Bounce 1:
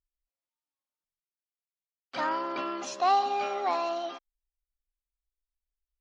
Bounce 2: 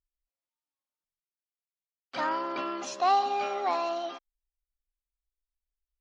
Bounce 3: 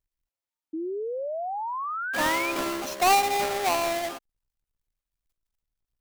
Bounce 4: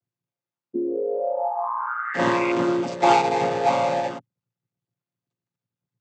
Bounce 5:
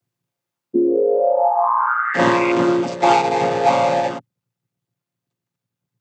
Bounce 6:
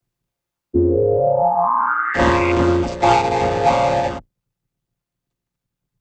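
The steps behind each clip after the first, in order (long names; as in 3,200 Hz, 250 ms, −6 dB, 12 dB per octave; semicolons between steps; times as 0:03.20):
no processing that can be heard
each half-wave held at its own peak; sound drawn into the spectrogram rise, 0:00.73–0:02.52, 310–2,500 Hz −31 dBFS
channel vocoder with a chord as carrier minor triad, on A#2; level +5.5 dB
speech leveller 0.5 s; level +6 dB
sub-octave generator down 2 octaves, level −2 dB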